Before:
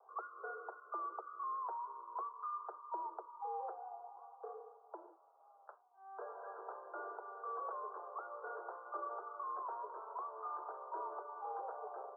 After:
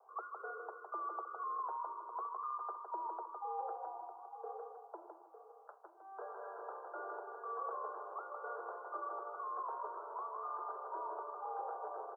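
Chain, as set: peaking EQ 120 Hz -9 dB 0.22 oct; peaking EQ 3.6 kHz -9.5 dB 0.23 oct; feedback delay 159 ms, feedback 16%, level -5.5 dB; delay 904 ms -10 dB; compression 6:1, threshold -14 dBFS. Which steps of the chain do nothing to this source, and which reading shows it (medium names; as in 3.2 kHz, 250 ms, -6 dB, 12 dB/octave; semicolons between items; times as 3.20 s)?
peaking EQ 120 Hz: input has nothing below 320 Hz; peaking EQ 3.6 kHz: input has nothing above 1.7 kHz; compression, threshold -14 dBFS: peak at its input -28.0 dBFS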